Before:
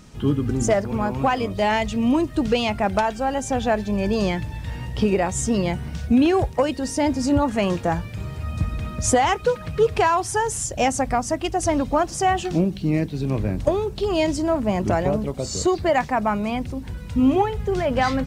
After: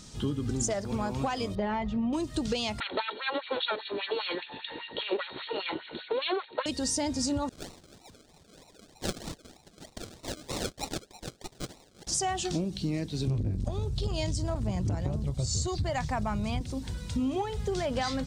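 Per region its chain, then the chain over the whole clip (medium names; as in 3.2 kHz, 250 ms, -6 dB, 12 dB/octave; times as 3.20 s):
1.55–2.13 s: low-pass 1.3 kHz + comb 5.4 ms, depth 58%
2.80–6.66 s: comb filter that takes the minimum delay 2.1 ms + LFO high-pass sine 5 Hz 280–2800 Hz + brick-wall FIR low-pass 4.4 kHz
7.49–12.07 s: rippled Chebyshev high-pass 2.3 kHz, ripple 9 dB + decimation with a swept rate 38×, swing 60% 3.2 Hz
13.27–16.61 s: resonant low shelf 180 Hz +13.5 dB, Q 1.5 + transformer saturation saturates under 230 Hz
whole clip: high-order bell 5.6 kHz +10 dB; compression, threshold -23 dBFS; trim -4 dB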